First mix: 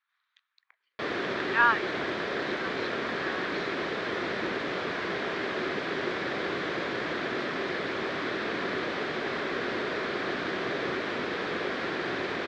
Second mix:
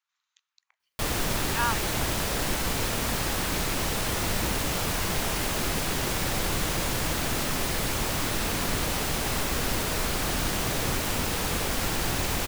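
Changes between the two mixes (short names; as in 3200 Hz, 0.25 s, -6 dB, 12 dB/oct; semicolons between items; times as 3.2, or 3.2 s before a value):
speech -6.5 dB; master: remove speaker cabinet 270–3500 Hz, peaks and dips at 380 Hz +7 dB, 860 Hz -7 dB, 1700 Hz +4 dB, 2800 Hz -7 dB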